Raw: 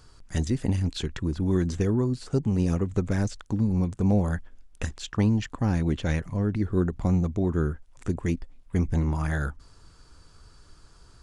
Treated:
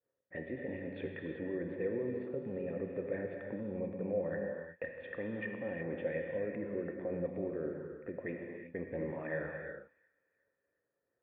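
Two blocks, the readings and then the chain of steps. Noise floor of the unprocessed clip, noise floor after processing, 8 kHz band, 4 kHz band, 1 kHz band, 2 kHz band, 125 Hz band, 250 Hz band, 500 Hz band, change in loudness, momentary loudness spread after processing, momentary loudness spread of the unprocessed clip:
−55 dBFS, −85 dBFS, below −35 dB, below −20 dB, −14.0 dB, −5.0 dB, −22.0 dB, −14.5 dB, −4.0 dB, −12.5 dB, 8 LU, 7 LU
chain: high-pass filter 210 Hz 12 dB per octave
low-pass that shuts in the quiet parts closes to 1,400 Hz, open at −28 dBFS
downward expander −51 dBFS
brickwall limiter −23 dBFS, peak gain reduction 9.5 dB
formant resonators in series e
delay with a high-pass on its return 361 ms, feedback 42%, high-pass 2,000 Hz, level −23 dB
reverb whose tail is shaped and stops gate 400 ms flat, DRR 1.5 dB
level +7 dB

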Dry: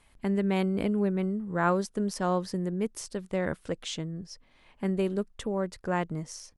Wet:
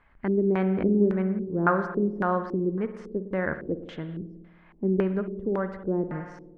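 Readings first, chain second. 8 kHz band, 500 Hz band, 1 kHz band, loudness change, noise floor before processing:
below −25 dB, +4.0 dB, +2.0 dB, +3.0 dB, −63 dBFS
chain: spring reverb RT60 1.5 s, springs 53 ms, chirp 55 ms, DRR 9 dB
auto-filter low-pass square 1.8 Hz 370–1,600 Hz

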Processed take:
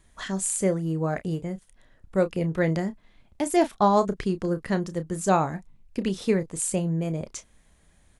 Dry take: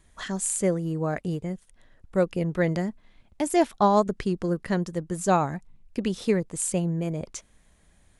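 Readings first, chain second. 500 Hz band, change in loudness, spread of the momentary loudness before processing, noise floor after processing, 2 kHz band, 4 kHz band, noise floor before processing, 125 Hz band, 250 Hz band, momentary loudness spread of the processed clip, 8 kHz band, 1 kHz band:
0.0 dB, +0.5 dB, 12 LU, −61 dBFS, +0.5 dB, +0.5 dB, −61 dBFS, +0.5 dB, +0.5 dB, 11 LU, +0.5 dB, +0.5 dB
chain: double-tracking delay 31 ms −11.5 dB

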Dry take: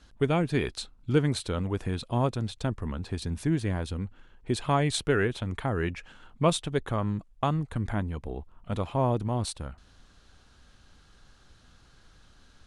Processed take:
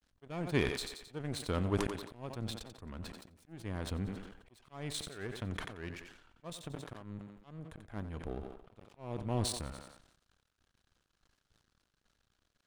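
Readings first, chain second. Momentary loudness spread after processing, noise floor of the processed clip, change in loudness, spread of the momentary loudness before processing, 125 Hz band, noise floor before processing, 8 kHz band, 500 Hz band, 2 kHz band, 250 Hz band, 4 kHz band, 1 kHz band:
17 LU, −81 dBFS, −10.5 dB, 11 LU, −11.5 dB, −59 dBFS, −6.0 dB, −11.5 dB, −9.0 dB, −10.5 dB, −7.0 dB, −13.5 dB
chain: notch filter 880 Hz, Q 21
volume swells 503 ms
dead-zone distortion −55.5 dBFS
power curve on the samples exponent 1.4
on a send: feedback echo with a high-pass in the loop 89 ms, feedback 45%, high-pass 200 Hz, level −13.5 dB
on the sum: level that may fall only so fast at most 63 dB per second
level +1 dB

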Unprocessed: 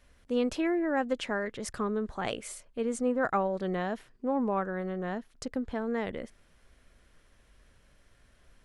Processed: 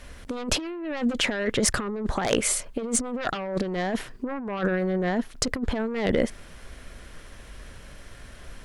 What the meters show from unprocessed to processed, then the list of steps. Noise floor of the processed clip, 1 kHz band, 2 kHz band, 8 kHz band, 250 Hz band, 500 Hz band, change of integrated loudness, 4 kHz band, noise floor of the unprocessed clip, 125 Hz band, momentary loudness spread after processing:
−47 dBFS, +1.0 dB, +6.5 dB, +17.0 dB, +4.0 dB, +3.0 dB, +5.0 dB, +13.0 dB, −64 dBFS, +8.0 dB, 22 LU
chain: sine wavefolder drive 9 dB, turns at −16 dBFS
compressor whose output falls as the input rises −25 dBFS, ratio −0.5

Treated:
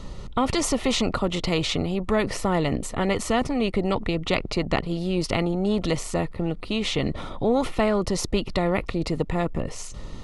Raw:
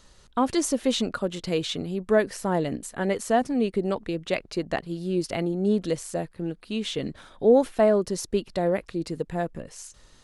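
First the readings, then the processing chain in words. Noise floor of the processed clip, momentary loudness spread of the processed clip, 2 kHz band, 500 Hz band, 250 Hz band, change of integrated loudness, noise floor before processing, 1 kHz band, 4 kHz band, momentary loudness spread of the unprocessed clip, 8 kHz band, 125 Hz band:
−37 dBFS, 5 LU, +4.0 dB, −1.5 dB, +1.5 dB, +1.0 dB, −56 dBFS, +2.0 dB, +5.0 dB, 11 LU, +2.5 dB, +5.5 dB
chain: Butterworth band-reject 1,600 Hz, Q 4.3
RIAA equalisation playback
every bin compressed towards the loudest bin 2 to 1
level −4 dB

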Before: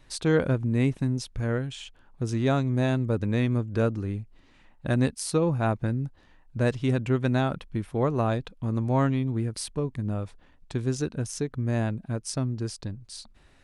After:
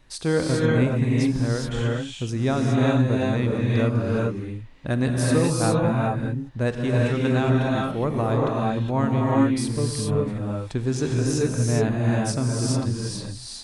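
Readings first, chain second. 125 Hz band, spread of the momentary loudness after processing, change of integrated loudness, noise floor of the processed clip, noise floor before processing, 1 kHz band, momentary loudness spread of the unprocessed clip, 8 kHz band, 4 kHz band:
+4.5 dB, 7 LU, +4.5 dB, −38 dBFS, −58 dBFS, +5.5 dB, 12 LU, +6.0 dB, +6.0 dB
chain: reverb whose tail is shaped and stops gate 440 ms rising, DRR −3.5 dB
speech leveller within 3 dB 2 s

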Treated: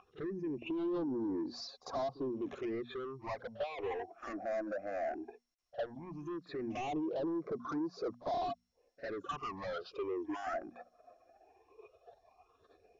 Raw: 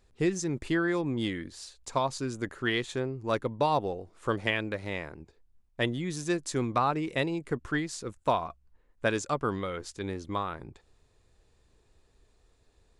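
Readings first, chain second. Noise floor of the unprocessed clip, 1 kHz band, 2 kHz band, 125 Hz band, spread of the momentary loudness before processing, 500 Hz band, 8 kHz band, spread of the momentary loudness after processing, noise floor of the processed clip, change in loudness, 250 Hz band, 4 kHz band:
−67 dBFS, −9.0 dB, −15.0 dB, −17.0 dB, 10 LU, −6.0 dB, below −20 dB, 9 LU, −75 dBFS, −8.5 dB, −6.5 dB, −13.0 dB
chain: expanding power law on the bin magnitudes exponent 1.9
treble cut that deepens with the level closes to 840 Hz, closed at −28 dBFS
mains-hum notches 60/120/180/240 Hz
dynamic equaliser 560 Hz, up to −6 dB, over −45 dBFS, Q 2.8
brickwall limiter −27.5 dBFS, peak gain reduction 8.5 dB
downward compressor 2 to 1, threshold −53 dBFS, peak gain reduction 12 dB
formant filter a
mid-hump overdrive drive 36 dB, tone 2,000 Hz, clips at −41 dBFS
all-pass phaser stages 8, 0.16 Hz, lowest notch 120–2,800 Hz
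echo ahead of the sound 49 ms −17.5 dB
level +13.5 dB
MP2 96 kbit/s 22,050 Hz

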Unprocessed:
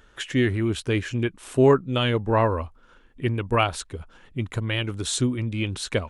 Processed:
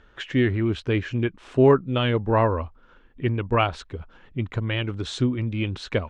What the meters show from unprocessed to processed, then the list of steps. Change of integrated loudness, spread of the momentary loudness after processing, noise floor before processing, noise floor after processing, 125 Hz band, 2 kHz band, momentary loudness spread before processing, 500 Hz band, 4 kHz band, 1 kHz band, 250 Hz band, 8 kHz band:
+0.5 dB, 12 LU, −55 dBFS, −55 dBFS, +1.0 dB, −0.5 dB, 13 LU, +0.5 dB, −2.5 dB, 0.0 dB, +1.0 dB, below −10 dB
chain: high-frequency loss of the air 170 metres
level +1 dB

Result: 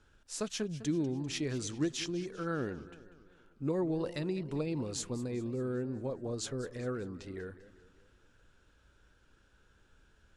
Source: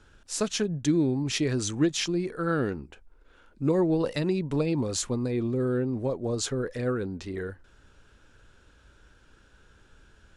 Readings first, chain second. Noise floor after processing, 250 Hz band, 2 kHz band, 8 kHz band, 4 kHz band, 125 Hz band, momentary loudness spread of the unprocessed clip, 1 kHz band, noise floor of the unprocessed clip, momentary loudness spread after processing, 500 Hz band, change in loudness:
−67 dBFS, −8.5 dB, −8.5 dB, −8.5 dB, −8.5 dB, −8.5 dB, 8 LU, −8.5 dB, −59 dBFS, 10 LU, −8.5 dB, −8.5 dB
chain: feedback echo with a swinging delay time 198 ms, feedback 52%, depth 171 cents, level −16 dB
level −8.5 dB

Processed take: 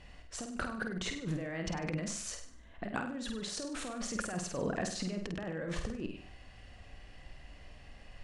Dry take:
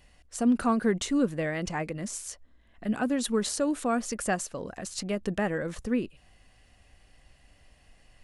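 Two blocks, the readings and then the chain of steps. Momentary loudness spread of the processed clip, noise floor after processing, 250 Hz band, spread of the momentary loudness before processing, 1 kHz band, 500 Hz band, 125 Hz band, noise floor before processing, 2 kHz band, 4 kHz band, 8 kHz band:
18 LU, −55 dBFS, −11.0 dB, 12 LU, −9.5 dB, −9.5 dB, −3.0 dB, −61 dBFS, −5.0 dB, −3.5 dB, −6.0 dB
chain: brickwall limiter −22.5 dBFS, peak gain reduction 8.5 dB
compressor whose output falls as the input rises −38 dBFS, ratio −1
high-frequency loss of the air 89 metres
flutter between parallel walls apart 8.5 metres, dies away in 0.52 s

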